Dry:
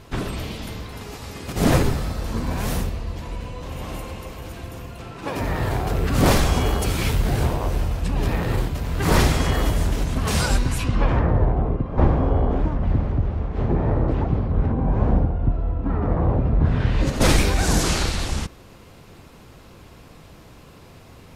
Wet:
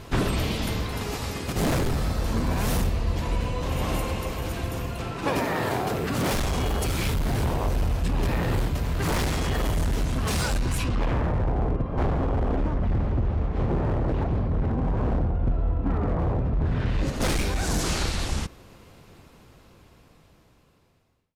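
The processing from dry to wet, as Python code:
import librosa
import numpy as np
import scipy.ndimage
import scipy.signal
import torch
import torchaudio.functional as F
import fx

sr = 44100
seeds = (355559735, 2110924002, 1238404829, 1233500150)

y = fx.fade_out_tail(x, sr, length_s=6.94)
y = fx.highpass(y, sr, hz=fx.line((5.39, 230.0), (6.31, 110.0)), slope=12, at=(5.39, 6.31), fade=0.02)
y = np.clip(10.0 ** (19.5 / 20.0) * y, -1.0, 1.0) / 10.0 ** (19.5 / 20.0)
y = fx.rider(y, sr, range_db=5, speed_s=0.5)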